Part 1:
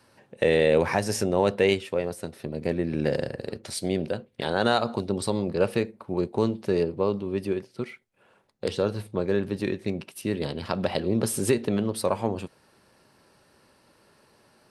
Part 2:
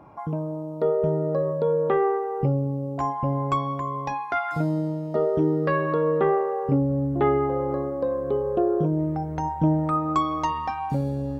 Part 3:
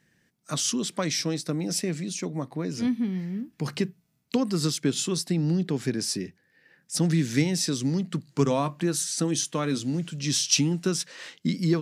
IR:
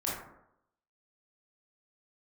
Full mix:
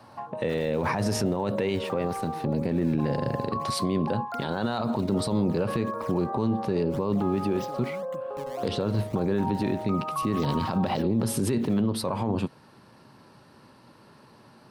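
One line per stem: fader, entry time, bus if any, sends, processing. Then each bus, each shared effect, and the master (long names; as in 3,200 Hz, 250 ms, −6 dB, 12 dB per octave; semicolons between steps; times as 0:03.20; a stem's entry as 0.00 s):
+0.5 dB, 0.00 s, bus A, no send, no processing
−6.0 dB, 0.00 s, bus A, no send, Chebyshev band-pass filter 540–1,600 Hz, order 3; notch filter 990 Hz, Q 6.9; brickwall limiter −25 dBFS, peak gain reduction 10 dB
+1.5 dB, 0.00 s, no bus, no send, downward compressor 4 to 1, threshold −32 dBFS, peak gain reduction 13 dB; sample-and-hold swept by an LFO 21×, swing 160% 1.8 Hz; automatic ducking −11 dB, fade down 1.00 s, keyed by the first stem
bus A: 0.0 dB, graphic EQ with 10 bands 125 Hz +10 dB, 250 Hz +8 dB, 1,000 Hz +8 dB, 4,000 Hz +4 dB, 8,000 Hz −4 dB; brickwall limiter −8 dBFS, peak gain reduction 6 dB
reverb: not used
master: brickwall limiter −17 dBFS, peak gain reduction 9 dB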